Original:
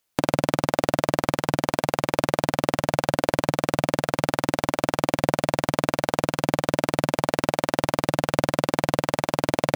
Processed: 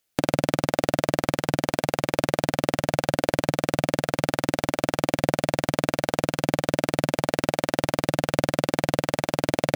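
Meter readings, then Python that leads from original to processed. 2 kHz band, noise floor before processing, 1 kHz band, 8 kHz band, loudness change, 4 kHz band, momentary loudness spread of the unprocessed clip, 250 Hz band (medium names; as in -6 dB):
-0.5 dB, -63 dBFS, -3.0 dB, 0.0 dB, -1.0 dB, 0.0 dB, 1 LU, 0.0 dB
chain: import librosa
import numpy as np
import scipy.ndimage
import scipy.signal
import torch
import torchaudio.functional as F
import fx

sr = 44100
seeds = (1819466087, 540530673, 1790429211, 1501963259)

y = fx.peak_eq(x, sr, hz=1000.0, db=-6.5, octaves=0.54)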